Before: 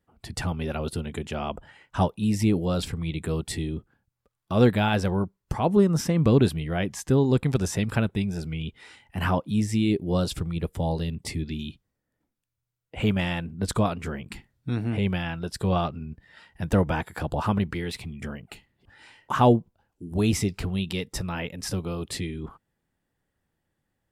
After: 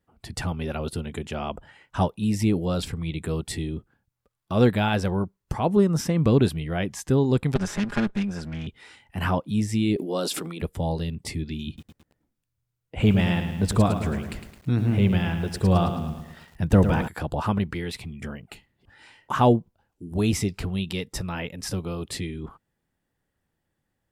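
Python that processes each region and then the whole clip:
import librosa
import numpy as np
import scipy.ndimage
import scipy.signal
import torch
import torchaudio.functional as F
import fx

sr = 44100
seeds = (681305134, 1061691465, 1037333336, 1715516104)

y = fx.chain(x, sr, fx.lower_of_two(delay_ms=4.9),
    fx.lowpass(hz=7800.0, slope=12),
    fx.peak_eq(hz=1600.0, db=6.0, octaves=0.62), at=(7.55, 8.67))
y = fx.chain(y, sr, fx.highpass(hz=240.0, slope=24),
    fx.high_shelf(hz=9400.0, db=5.0),
    fx.sustainer(db_per_s=28.0), at=(9.96, 10.62))
y = fx.chain(y, sr, fx.low_shelf(hz=330.0, db=6.0),
    fx.echo_crushed(ms=108, feedback_pct=55, bits=8, wet_db=-8.5), at=(11.67, 17.08))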